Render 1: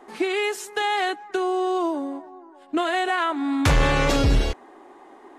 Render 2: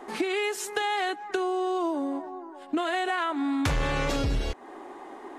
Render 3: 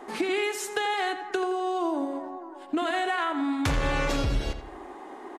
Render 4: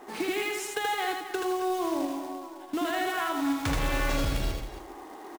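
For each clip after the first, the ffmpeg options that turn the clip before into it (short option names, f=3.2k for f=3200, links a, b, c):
-af "acompressor=threshold=-31dB:ratio=4,volume=4.5dB"
-filter_complex "[0:a]asplit=2[a][b];[b]adelay=85,lowpass=f=3.5k:p=1,volume=-9dB,asplit=2[c][d];[d]adelay=85,lowpass=f=3.5k:p=1,volume=0.46,asplit=2[e][f];[f]adelay=85,lowpass=f=3.5k:p=1,volume=0.46,asplit=2[g][h];[h]adelay=85,lowpass=f=3.5k:p=1,volume=0.46,asplit=2[i][j];[j]adelay=85,lowpass=f=3.5k:p=1,volume=0.46[k];[a][c][e][g][i][k]amix=inputs=6:normalize=0"
-af "acrusher=bits=3:mode=log:mix=0:aa=0.000001,aecho=1:1:78.72|271.1:0.708|0.282,volume=-4dB"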